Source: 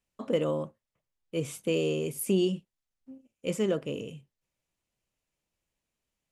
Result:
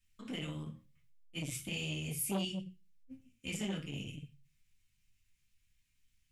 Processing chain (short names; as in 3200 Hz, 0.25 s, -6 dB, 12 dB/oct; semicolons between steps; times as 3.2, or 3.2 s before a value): EQ curve 100 Hz 0 dB, 630 Hz -30 dB, 2000 Hz -5 dB; compressor 1.5:1, threshold -55 dBFS, peak gain reduction 7.5 dB; reverb RT60 0.35 s, pre-delay 3 ms, DRR -4 dB; core saturation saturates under 610 Hz; gain +6.5 dB